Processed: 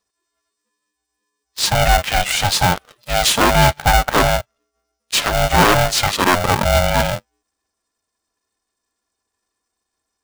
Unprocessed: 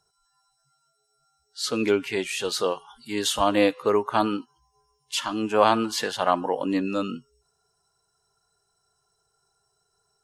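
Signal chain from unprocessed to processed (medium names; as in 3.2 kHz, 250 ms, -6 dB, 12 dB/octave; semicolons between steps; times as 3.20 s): waveshaping leveller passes 3; polarity switched at an audio rate 360 Hz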